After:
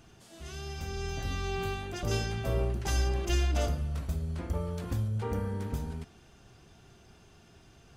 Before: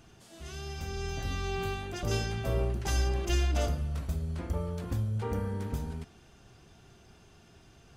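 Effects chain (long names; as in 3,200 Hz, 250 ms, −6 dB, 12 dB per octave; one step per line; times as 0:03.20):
0:04.55–0:05.08: one half of a high-frequency compander encoder only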